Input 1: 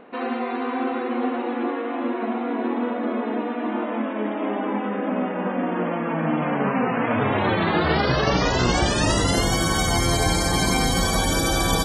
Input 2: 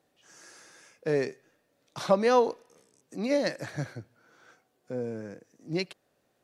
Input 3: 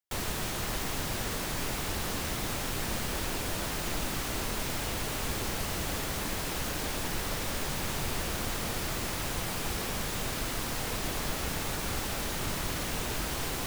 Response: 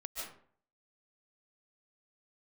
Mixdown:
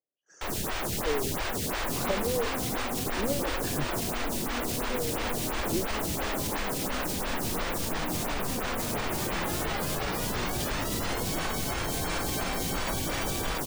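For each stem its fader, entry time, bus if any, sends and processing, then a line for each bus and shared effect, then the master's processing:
−20.0 dB, 1.75 s, bus A, no send, no processing
−1.5 dB, 0.00 s, no bus, no send, spectral envelope exaggerated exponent 2; noise gate −57 dBFS, range −26 dB; treble cut that deepens with the level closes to 340 Hz, closed at −23 dBFS
−1.0 dB, 0.30 s, bus A, no send, phaser with staggered stages 2.9 Hz
bus A: 0.0 dB, automatic gain control gain up to 8.5 dB; brickwall limiter −21 dBFS, peak gain reduction 7 dB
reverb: not used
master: no processing

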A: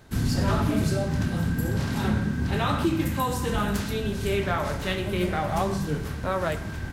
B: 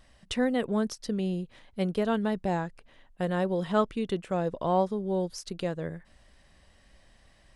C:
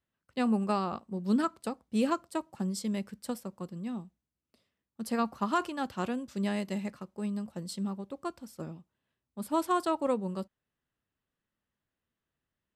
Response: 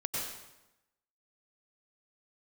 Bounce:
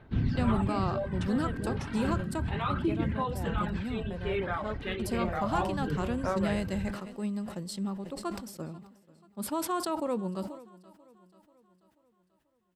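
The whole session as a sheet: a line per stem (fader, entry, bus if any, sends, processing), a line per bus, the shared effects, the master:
−6.0 dB, 0.00 s, no send, no echo send, reverb reduction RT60 1.1 s; low-pass filter 3,300 Hz 24 dB per octave; phase shifter 0.32 Hz, delay 2.8 ms, feedback 40%
−13.0 dB, 0.90 s, no send, no echo send, no processing
+0.5 dB, 0.00 s, muted 0:02.49–0:03.35, no send, echo send −22 dB, brickwall limiter −23.5 dBFS, peak gain reduction 5 dB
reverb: not used
echo: repeating echo 487 ms, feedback 52%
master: level that may fall only so fast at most 76 dB per second

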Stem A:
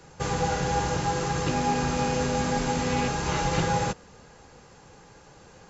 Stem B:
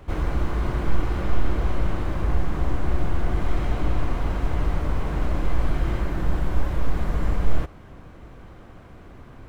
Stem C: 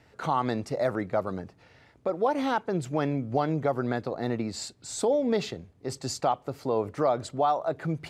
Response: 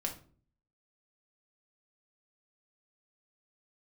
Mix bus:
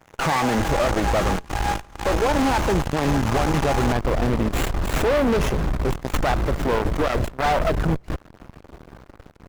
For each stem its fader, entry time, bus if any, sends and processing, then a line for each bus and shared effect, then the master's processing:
−10.0 dB, 0.00 s, no send, elliptic high-pass filter 610 Hz
−13.0 dB, 0.50 s, no send, no processing
−2.5 dB, 0.00 s, no send, brickwall limiter −18.5 dBFS, peak gain reduction 5 dB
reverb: not used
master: high-shelf EQ 8,300 Hz +8 dB; leveller curve on the samples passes 5; windowed peak hold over 9 samples

